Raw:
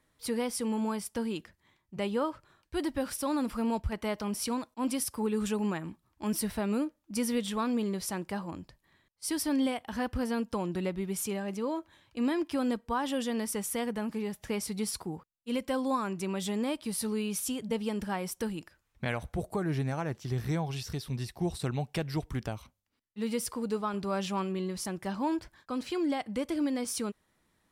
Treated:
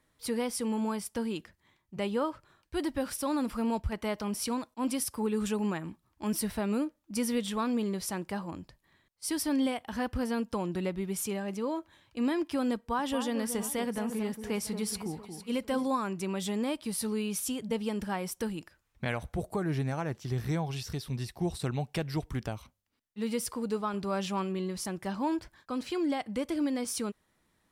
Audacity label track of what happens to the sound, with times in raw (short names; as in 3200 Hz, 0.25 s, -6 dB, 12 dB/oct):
12.760000	15.890000	echo with dull and thin repeats by turns 0.228 s, split 1500 Hz, feedback 57%, level -8 dB